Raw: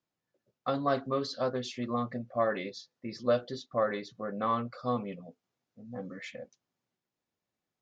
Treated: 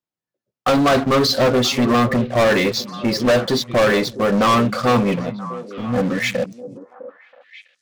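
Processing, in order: waveshaping leveller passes 5; repeats whose band climbs or falls 327 ms, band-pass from 150 Hz, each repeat 1.4 oct, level -8.5 dB; trim +4.5 dB

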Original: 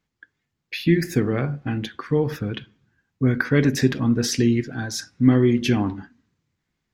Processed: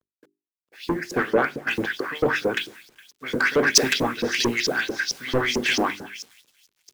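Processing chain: spectral levelling over time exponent 0.6; peaking EQ 2.9 kHz -9 dB 2.4 oct, from 1.14 s +2.5 dB; repeats whose band climbs or falls 414 ms, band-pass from 2.7 kHz, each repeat 0.7 oct, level -9.5 dB; LFO band-pass saw up 4.5 Hz 380–6000 Hz; saturation -25 dBFS, distortion -9 dB; bit crusher 9-bit; harmonic-percussive split harmonic -6 dB; hum notches 50/100/150/200/250/300/350/400 Hz; loudness maximiser +24.5 dB; three bands expanded up and down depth 100%; trim -13 dB

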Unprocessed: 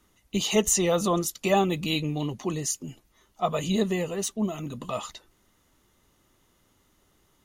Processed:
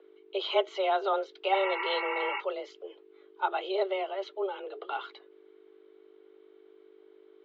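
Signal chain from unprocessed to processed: spectral replace 1.56–2.37 s, 630–2700 Hz before; hum 50 Hz, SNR 12 dB; mistuned SSB +190 Hz 200–3500 Hz; trim -3 dB

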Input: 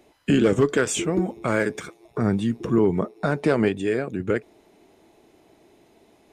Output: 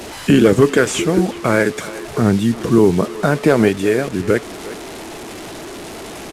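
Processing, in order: one-bit delta coder 64 kbps, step -33 dBFS; speakerphone echo 360 ms, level -15 dB; trim +7.5 dB

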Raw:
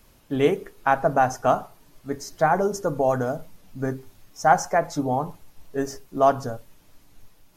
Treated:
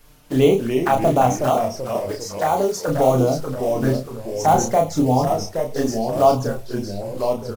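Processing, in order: block-companded coder 5-bit; in parallel at +2.5 dB: peak limiter -14.5 dBFS, peak gain reduction 9.5 dB; 1.42–2.88 s: on the sum: high-pass 490 Hz 6 dB/octave; touch-sensitive flanger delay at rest 7.3 ms, full sweep at -13.5 dBFS; ever faster or slower copies 241 ms, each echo -2 st, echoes 3, each echo -6 dB; doubling 31 ms -4 dB; trim -1 dB

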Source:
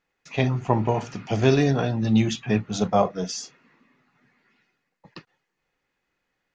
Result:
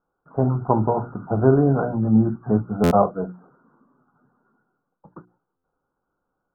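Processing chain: Chebyshev low-pass 1.5 kHz, order 8; hum notches 60/120/180/240/300/360 Hz; buffer glitch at 2.83/5.56 s, samples 512, times 6; trim +3.5 dB

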